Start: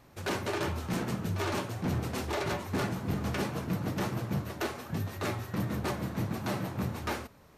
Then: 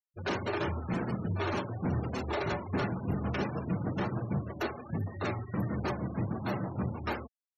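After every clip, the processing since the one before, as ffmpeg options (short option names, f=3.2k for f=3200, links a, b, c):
-af "afftfilt=real='re*gte(hypot(re,im),0.0141)':imag='im*gte(hypot(re,im),0.0141)':win_size=1024:overlap=0.75"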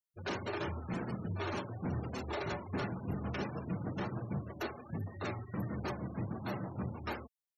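-af "highshelf=f=5.5k:g=6,volume=-5.5dB"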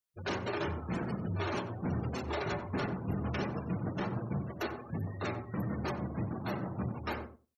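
-filter_complex "[0:a]asplit=2[a][b];[b]adelay=92,lowpass=f=1.3k:p=1,volume=-8dB,asplit=2[c][d];[d]adelay=92,lowpass=f=1.3k:p=1,volume=0.16,asplit=2[e][f];[f]adelay=92,lowpass=f=1.3k:p=1,volume=0.16[g];[a][c][e][g]amix=inputs=4:normalize=0,volume=2.5dB"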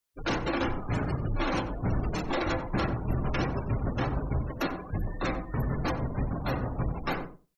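-af "afreqshift=-67,volume=6dB"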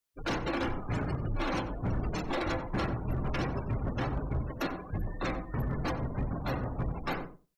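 -af "volume=22.5dB,asoftclip=hard,volume=-22.5dB,volume=-2.5dB"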